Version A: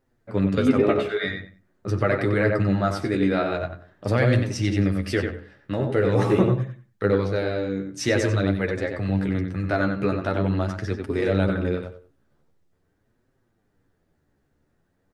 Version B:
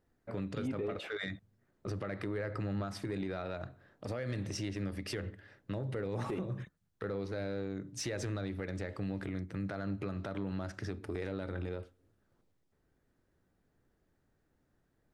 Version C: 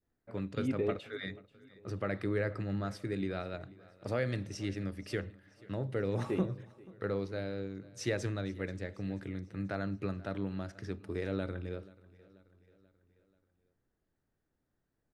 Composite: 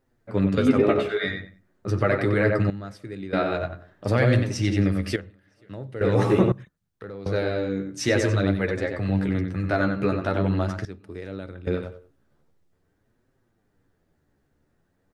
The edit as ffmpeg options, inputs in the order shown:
-filter_complex "[2:a]asplit=3[a][b][c];[0:a]asplit=5[d][e][f][g][h];[d]atrim=end=2.702[i];[a]atrim=start=2.698:end=3.332[j];[e]atrim=start=3.328:end=5.162[k];[b]atrim=start=5.158:end=6.012[l];[f]atrim=start=6.008:end=6.522[m];[1:a]atrim=start=6.518:end=7.262[n];[g]atrim=start=7.258:end=10.852[o];[c]atrim=start=10.848:end=11.672[p];[h]atrim=start=11.668[q];[i][j]acrossfade=d=0.004:c1=hsin:c2=hsin[r];[r][k]acrossfade=d=0.004:c1=hsin:c2=hsin[s];[s][l]acrossfade=d=0.004:c1=hsin:c2=hsin[t];[t][m]acrossfade=d=0.004:c1=hsin:c2=hsin[u];[u][n]acrossfade=d=0.004:c1=hsin:c2=hsin[v];[v][o]acrossfade=d=0.004:c1=hsin:c2=hsin[w];[w][p]acrossfade=d=0.004:c1=hsin:c2=hsin[x];[x][q]acrossfade=d=0.004:c1=hsin:c2=hsin"

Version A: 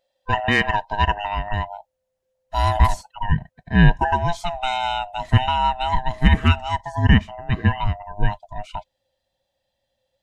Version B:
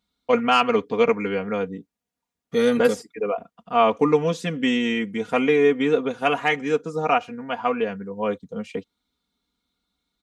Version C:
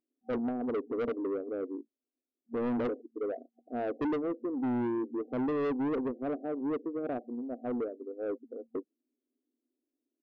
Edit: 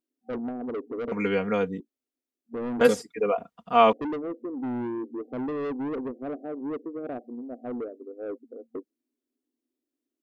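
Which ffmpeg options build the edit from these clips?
-filter_complex "[1:a]asplit=2[a][b];[2:a]asplit=3[c][d][e];[c]atrim=end=1.122[f];[a]atrim=start=1.118:end=1.802[g];[d]atrim=start=1.798:end=2.812[h];[b]atrim=start=2.808:end=3.932[i];[e]atrim=start=3.928[j];[f][g]acrossfade=d=0.004:c1=hsin:c2=hsin[k];[k][h]acrossfade=d=0.004:c1=hsin:c2=hsin[l];[l][i]acrossfade=d=0.004:c1=hsin:c2=hsin[m];[m][j]acrossfade=d=0.004:c1=hsin:c2=hsin"

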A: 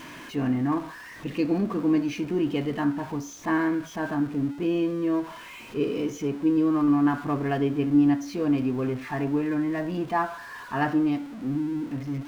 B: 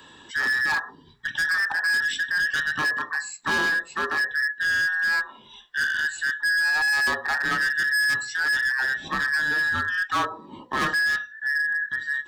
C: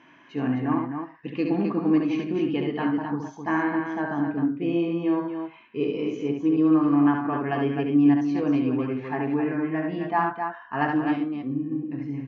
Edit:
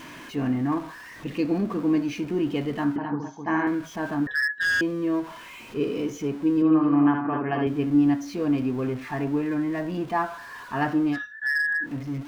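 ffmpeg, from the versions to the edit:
-filter_complex "[2:a]asplit=2[a][b];[1:a]asplit=2[c][d];[0:a]asplit=5[e][f][g][h][i];[e]atrim=end=2.962[j];[a]atrim=start=2.958:end=3.672[k];[f]atrim=start=3.668:end=4.272[l];[c]atrim=start=4.268:end=4.812[m];[g]atrim=start=4.808:end=6.622[n];[b]atrim=start=6.618:end=7.672[o];[h]atrim=start=7.668:end=11.22[p];[d]atrim=start=11.12:end=11.9[q];[i]atrim=start=11.8[r];[j][k]acrossfade=d=0.004:c1=hsin:c2=hsin[s];[s][l]acrossfade=d=0.004:c1=hsin:c2=hsin[t];[t][m]acrossfade=d=0.004:c1=hsin:c2=hsin[u];[u][n]acrossfade=d=0.004:c1=hsin:c2=hsin[v];[v][o]acrossfade=d=0.004:c1=hsin:c2=hsin[w];[w][p]acrossfade=d=0.004:c1=hsin:c2=hsin[x];[x][q]acrossfade=d=0.1:c1=tri:c2=tri[y];[y][r]acrossfade=d=0.1:c1=tri:c2=tri"

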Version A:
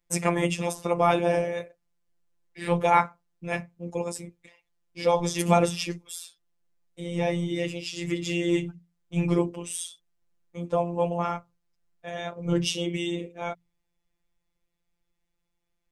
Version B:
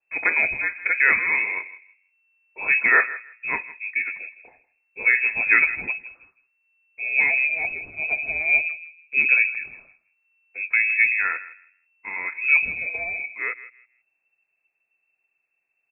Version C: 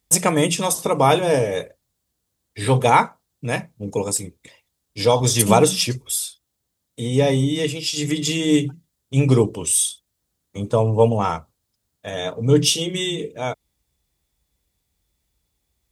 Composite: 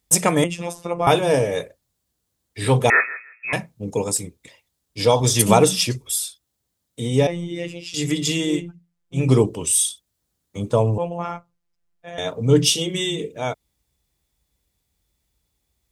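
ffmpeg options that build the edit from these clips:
-filter_complex "[0:a]asplit=4[a][b][c][d];[2:a]asplit=6[e][f][g][h][i][j];[e]atrim=end=0.442[k];[a]atrim=start=0.438:end=1.072[l];[f]atrim=start=1.068:end=2.902[m];[1:a]atrim=start=2.898:end=3.532[n];[g]atrim=start=3.528:end=7.272[o];[b]atrim=start=7.268:end=7.942[p];[h]atrim=start=7.938:end=8.65[q];[c]atrim=start=8.41:end=9.3[r];[i]atrim=start=9.06:end=10.982[s];[d]atrim=start=10.978:end=12.182[t];[j]atrim=start=12.178[u];[k][l]acrossfade=d=0.004:c1=hsin:c2=hsin[v];[v][m]acrossfade=d=0.004:c1=hsin:c2=hsin[w];[w][n]acrossfade=d=0.004:c1=hsin:c2=hsin[x];[x][o]acrossfade=d=0.004:c1=hsin:c2=hsin[y];[y][p]acrossfade=d=0.004:c1=hsin:c2=hsin[z];[z][q]acrossfade=d=0.004:c1=hsin:c2=hsin[aa];[aa][r]acrossfade=d=0.24:c1=tri:c2=tri[ab];[ab][s]acrossfade=d=0.24:c1=tri:c2=tri[ac];[ac][t]acrossfade=d=0.004:c1=hsin:c2=hsin[ad];[ad][u]acrossfade=d=0.004:c1=hsin:c2=hsin"

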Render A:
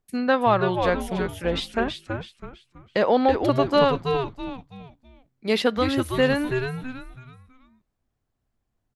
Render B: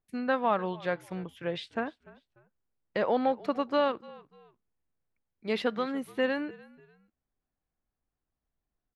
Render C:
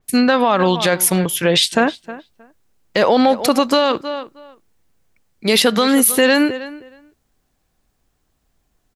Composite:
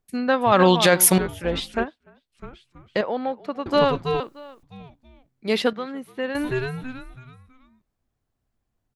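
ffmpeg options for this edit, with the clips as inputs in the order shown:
-filter_complex "[2:a]asplit=2[a][b];[1:a]asplit=3[c][d][e];[0:a]asplit=6[f][g][h][i][j][k];[f]atrim=end=0.522[l];[a]atrim=start=0.518:end=1.182[m];[g]atrim=start=1.178:end=1.86[n];[c]atrim=start=1.82:end=2.36[o];[h]atrim=start=2.32:end=3.012[p];[d]atrim=start=3.008:end=3.662[q];[i]atrim=start=3.658:end=4.202[r];[b]atrim=start=4.198:end=4.632[s];[j]atrim=start=4.628:end=5.732[t];[e]atrim=start=5.728:end=6.352[u];[k]atrim=start=6.348[v];[l][m]acrossfade=d=0.004:c1=hsin:c2=hsin[w];[w][n]acrossfade=d=0.004:c1=hsin:c2=hsin[x];[x][o]acrossfade=d=0.04:c1=tri:c2=tri[y];[y][p]acrossfade=d=0.04:c1=tri:c2=tri[z];[z][q]acrossfade=d=0.004:c1=hsin:c2=hsin[aa];[aa][r]acrossfade=d=0.004:c1=hsin:c2=hsin[ab];[ab][s]acrossfade=d=0.004:c1=hsin:c2=hsin[ac];[ac][t]acrossfade=d=0.004:c1=hsin:c2=hsin[ad];[ad][u]acrossfade=d=0.004:c1=hsin:c2=hsin[ae];[ae][v]acrossfade=d=0.004:c1=hsin:c2=hsin"

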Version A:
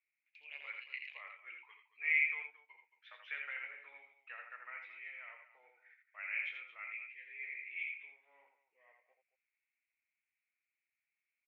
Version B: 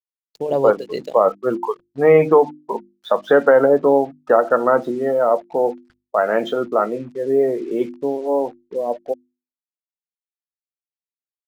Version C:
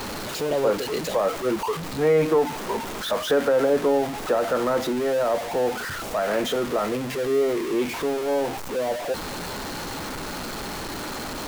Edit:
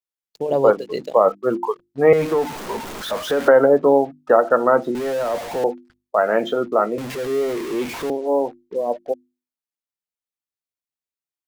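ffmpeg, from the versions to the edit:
-filter_complex "[2:a]asplit=3[a][b][c];[1:a]asplit=4[d][e][f][g];[d]atrim=end=2.132[h];[a]atrim=start=2.128:end=3.482[i];[e]atrim=start=3.478:end=4.952[j];[b]atrim=start=4.948:end=5.642[k];[f]atrim=start=5.638:end=6.982[l];[c]atrim=start=6.978:end=8.102[m];[g]atrim=start=8.098[n];[h][i]acrossfade=d=0.004:c1=hsin:c2=hsin[o];[o][j]acrossfade=d=0.004:c1=hsin:c2=hsin[p];[p][k]acrossfade=d=0.004:c1=hsin:c2=hsin[q];[q][l]acrossfade=d=0.004:c1=hsin:c2=hsin[r];[r][m]acrossfade=d=0.004:c1=hsin:c2=hsin[s];[s][n]acrossfade=d=0.004:c1=hsin:c2=hsin"

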